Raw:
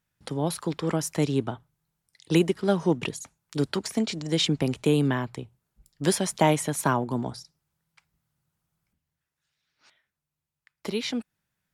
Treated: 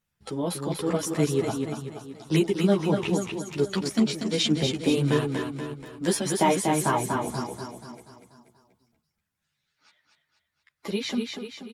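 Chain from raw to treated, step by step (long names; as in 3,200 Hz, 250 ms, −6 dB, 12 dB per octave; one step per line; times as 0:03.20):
spectral magnitudes quantised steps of 15 dB
repeating echo 241 ms, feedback 51%, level −4.5 dB
string-ensemble chorus
level +3 dB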